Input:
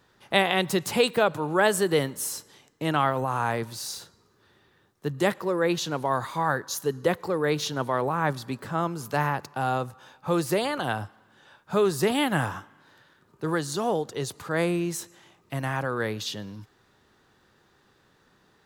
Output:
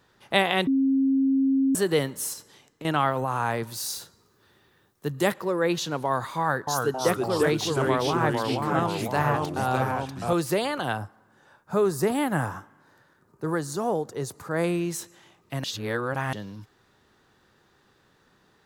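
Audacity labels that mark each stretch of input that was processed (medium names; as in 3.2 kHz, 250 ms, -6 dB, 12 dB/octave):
0.670000	1.750000	bleep 269 Hz -18.5 dBFS
2.330000	2.850000	compression, threshold -36 dBFS
3.670000	5.330000	treble shelf 10 kHz +10 dB
6.400000	10.330000	ever faster or slower copies 270 ms, each echo -2 st, echoes 3
10.970000	14.640000	peaking EQ 3.2 kHz -10.5 dB 1.1 oct
15.640000	16.330000	reverse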